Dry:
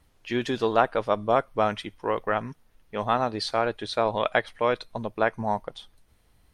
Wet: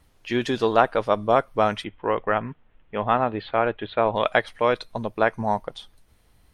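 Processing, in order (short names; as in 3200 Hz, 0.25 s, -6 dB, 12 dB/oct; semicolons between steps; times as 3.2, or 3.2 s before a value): 1.84–4.16 steep low-pass 3300 Hz 48 dB/oct; gain +3 dB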